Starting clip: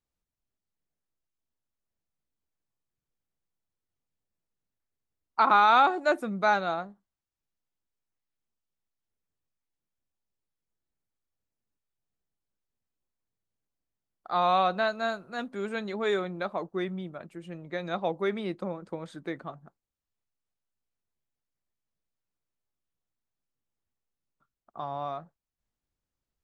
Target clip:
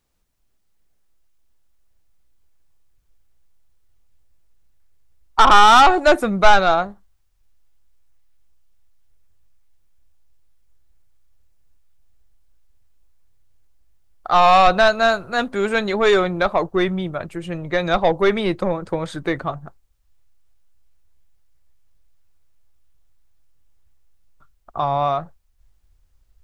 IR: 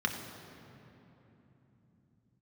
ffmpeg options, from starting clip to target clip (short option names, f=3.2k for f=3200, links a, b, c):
-af "aeval=exprs='0.316*(cos(1*acos(clip(val(0)/0.316,-1,1)))-cos(1*PI/2))+0.0447*(cos(5*acos(clip(val(0)/0.316,-1,1)))-cos(5*PI/2))':c=same,aeval=exprs='0.355*sin(PI/2*1.58*val(0)/0.355)':c=same,asubboost=boost=9.5:cutoff=66,volume=3dB"